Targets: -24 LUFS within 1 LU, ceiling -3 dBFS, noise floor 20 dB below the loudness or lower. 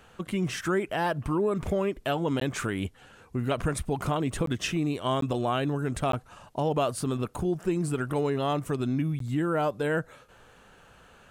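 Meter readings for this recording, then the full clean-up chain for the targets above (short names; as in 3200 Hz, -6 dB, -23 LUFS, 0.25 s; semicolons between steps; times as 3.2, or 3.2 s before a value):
dropouts 5; longest dropout 13 ms; loudness -29.0 LUFS; peak -13.5 dBFS; loudness target -24.0 LUFS
-> interpolate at 2.4/4.46/5.21/6.12/9.19, 13 ms; gain +5 dB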